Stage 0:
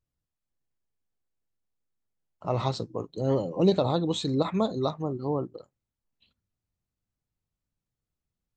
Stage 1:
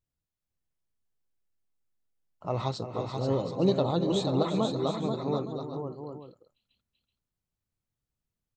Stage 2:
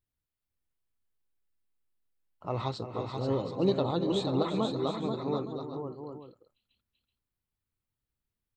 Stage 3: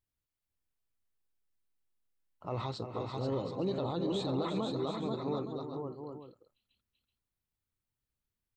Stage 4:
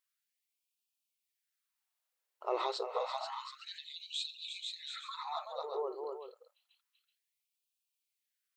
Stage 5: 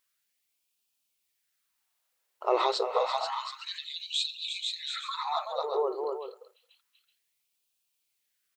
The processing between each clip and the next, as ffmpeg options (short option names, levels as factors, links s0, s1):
-af "aecho=1:1:342|379|485|728|863:0.299|0.1|0.531|0.335|0.168,volume=0.708"
-af "equalizer=f=160:t=o:w=0.67:g=-5,equalizer=f=630:t=o:w=0.67:g=-4,equalizer=f=6300:t=o:w=0.67:g=-8"
-af "alimiter=limit=0.0708:level=0:latency=1:release=23,volume=0.794"
-af "afftfilt=real='re*gte(b*sr/1024,340*pow(2400/340,0.5+0.5*sin(2*PI*0.29*pts/sr)))':imag='im*gte(b*sr/1024,340*pow(2400/340,0.5+0.5*sin(2*PI*0.29*pts/sr)))':win_size=1024:overlap=0.75,volume=1.78"
-filter_complex "[0:a]asplit=2[s0][s1];[s1]adelay=220,highpass=300,lowpass=3400,asoftclip=type=hard:threshold=0.0299,volume=0.0631[s2];[s0][s2]amix=inputs=2:normalize=0,volume=2.66"